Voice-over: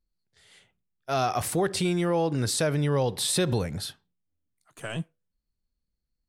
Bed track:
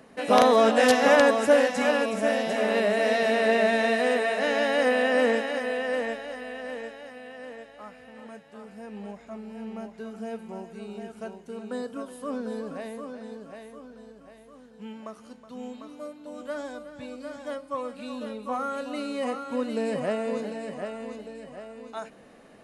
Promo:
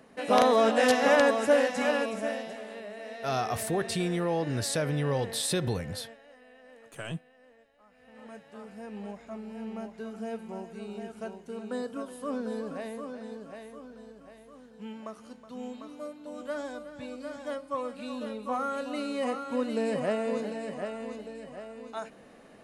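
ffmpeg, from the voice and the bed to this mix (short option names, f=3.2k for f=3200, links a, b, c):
-filter_complex "[0:a]adelay=2150,volume=-4dB[a];[1:a]volume=13.5dB,afade=t=out:st=1.98:d=0.67:silence=0.188365,afade=t=in:st=7.88:d=0.54:silence=0.141254[b];[a][b]amix=inputs=2:normalize=0"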